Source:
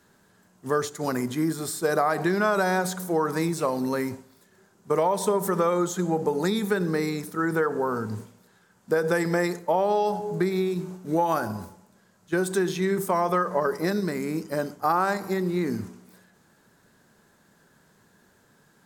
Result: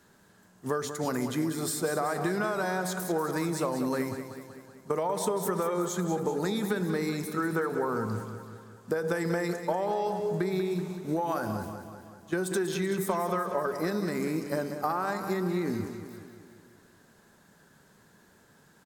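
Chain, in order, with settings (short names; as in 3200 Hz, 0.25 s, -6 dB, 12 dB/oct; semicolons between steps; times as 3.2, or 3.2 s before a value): compressor, threshold -26 dBFS, peak gain reduction 8.5 dB; feedback echo 0.19 s, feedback 57%, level -9.5 dB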